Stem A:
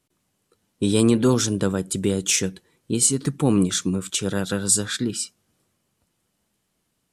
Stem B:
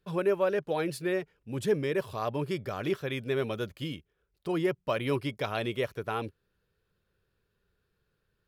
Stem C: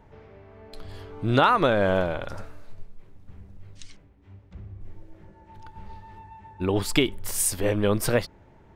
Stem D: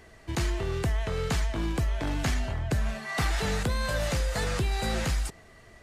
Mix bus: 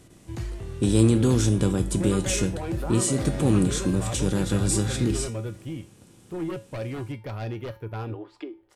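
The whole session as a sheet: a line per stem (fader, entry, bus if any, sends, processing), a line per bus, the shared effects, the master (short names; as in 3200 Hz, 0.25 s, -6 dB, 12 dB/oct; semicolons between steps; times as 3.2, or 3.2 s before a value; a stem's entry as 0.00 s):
-2.0 dB, 0.00 s, no send, per-bin compression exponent 0.6
-10.0 dB, 1.85 s, no send, band shelf 5600 Hz -9.5 dB; sine folder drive 10 dB, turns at -15.5 dBFS
-9.5 dB, 1.45 s, no send, Chebyshev high-pass 300 Hz, order 4; treble ducked by the level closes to 1100 Hz, closed at -19.5 dBFS; high shelf 5500 Hz -6.5 dB
-4.0 dB, 0.00 s, no send, dry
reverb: off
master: low shelf 410 Hz +9 dB; resonator 110 Hz, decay 0.3 s, harmonics odd, mix 70%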